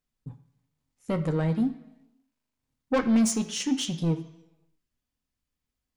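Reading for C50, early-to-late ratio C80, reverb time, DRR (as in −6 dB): 12.5 dB, 14.5 dB, 1.0 s, 5.5 dB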